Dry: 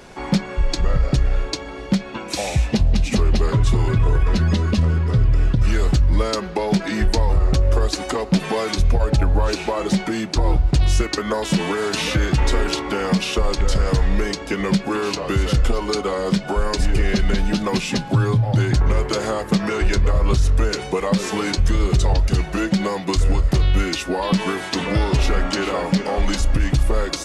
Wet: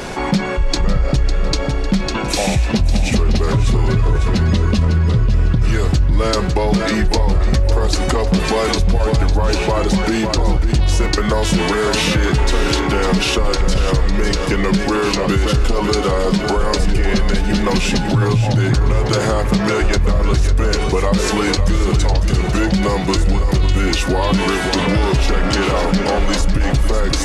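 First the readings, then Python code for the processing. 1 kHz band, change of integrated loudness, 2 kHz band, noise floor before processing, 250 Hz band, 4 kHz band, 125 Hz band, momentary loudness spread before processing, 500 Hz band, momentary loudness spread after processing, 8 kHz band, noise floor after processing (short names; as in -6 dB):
+5.0 dB, +4.0 dB, +5.0 dB, -32 dBFS, +4.0 dB, +5.0 dB, +3.0 dB, 4 LU, +5.0 dB, 2 LU, +5.0 dB, -19 dBFS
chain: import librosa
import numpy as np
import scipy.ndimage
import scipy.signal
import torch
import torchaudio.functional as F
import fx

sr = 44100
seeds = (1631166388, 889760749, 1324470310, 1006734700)

y = fx.echo_feedback(x, sr, ms=552, feedback_pct=34, wet_db=-8.0)
y = fx.env_flatten(y, sr, amount_pct=50)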